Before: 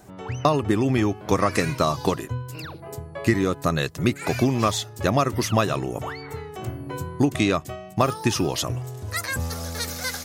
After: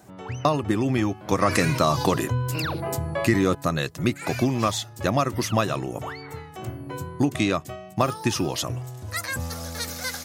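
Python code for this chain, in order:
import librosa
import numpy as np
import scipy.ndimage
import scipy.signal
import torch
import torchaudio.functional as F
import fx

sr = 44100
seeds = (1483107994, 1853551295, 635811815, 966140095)

y = scipy.signal.sosfilt(scipy.signal.butter(2, 73.0, 'highpass', fs=sr, output='sos'), x)
y = fx.notch(y, sr, hz=420.0, q=13.0)
y = fx.env_flatten(y, sr, amount_pct=50, at=(1.41, 3.55))
y = y * librosa.db_to_amplitude(-1.5)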